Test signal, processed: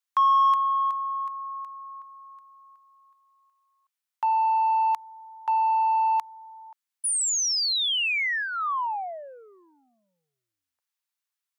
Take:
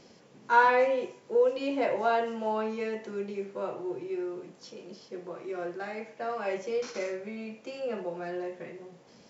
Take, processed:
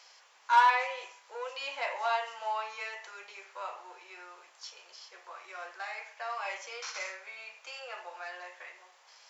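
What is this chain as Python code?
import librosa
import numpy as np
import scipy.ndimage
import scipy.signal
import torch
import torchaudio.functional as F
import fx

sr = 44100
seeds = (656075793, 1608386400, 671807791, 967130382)

p1 = 10.0 ** (-22.0 / 20.0) * np.tanh(x / 10.0 ** (-22.0 / 20.0))
p2 = x + (p1 * librosa.db_to_amplitude(-4.0))
p3 = fx.dynamic_eq(p2, sr, hz=1500.0, q=4.7, threshold_db=-45.0, ratio=4.0, max_db=-7)
y = scipy.signal.sosfilt(scipy.signal.butter(4, 890.0, 'highpass', fs=sr, output='sos'), p3)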